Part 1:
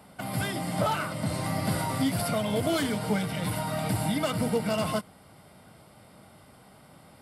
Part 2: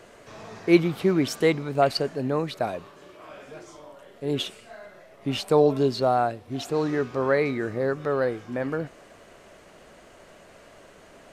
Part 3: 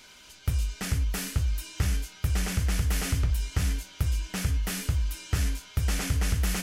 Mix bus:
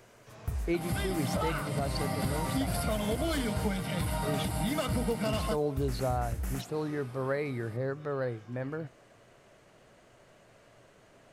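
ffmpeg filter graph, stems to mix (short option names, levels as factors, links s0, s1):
-filter_complex "[0:a]adelay=550,volume=0.891[s0];[1:a]equalizer=f=120:t=o:w=0.39:g=12.5,volume=0.355[s1];[2:a]equalizer=f=3800:t=o:w=1.3:g=-14,volume=0.422[s2];[s0][s1][s2]amix=inputs=3:normalize=0,alimiter=limit=0.0891:level=0:latency=1:release=278"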